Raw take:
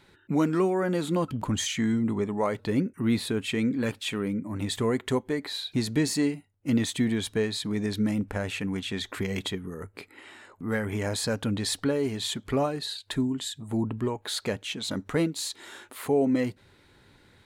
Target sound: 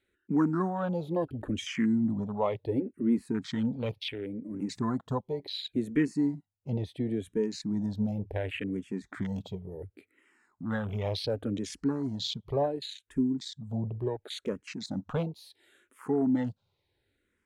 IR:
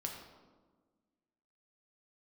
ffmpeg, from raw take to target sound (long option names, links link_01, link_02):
-filter_complex "[0:a]afwtdn=0.0178,asettb=1/sr,asplit=3[link_01][link_02][link_03];[link_01]atrim=end=4.014[link_04];[link_02]atrim=start=4.01:end=4.54,asetpts=PTS-STARTPTS,afade=type=in:duration=0.004:curve=qsin,afade=type=out:start_time=0.526:duration=0.004:curve=qsin,acompressor=threshold=-33dB:ratio=2[link_05];[link_03]atrim=start=4.536[link_06];[link_04][link_05]acrossfade=duration=0.004:curve1=hsin:curve2=qsin[link_07];[link_07][link_06]acrossfade=duration=0.004:curve1=qsin:curve2=hsin,asettb=1/sr,asplit=3[link_08][link_09][link_10];[link_08]atrim=end=5.884[link_11];[link_09]atrim=start=5.88:end=7.11,asetpts=PTS-STARTPTS,afade=type=in:duration=0.004:curve=qsin,afade=type=out:start_time=1.226:duration=0.004:curve=qsin,highshelf=frequency=11000:gain=-12[link_12];[link_10]atrim=start=7.106[link_13];[link_11][link_12]acrossfade=duration=0.004:curve1=hsin:curve2=qsin[link_14];[link_14][link_13]acrossfade=duration=0.004:curve1=qsin:curve2=hsin,asplit=2[link_15][link_16];[link_16]afreqshift=-0.7[link_17];[link_15][link_17]amix=inputs=2:normalize=1"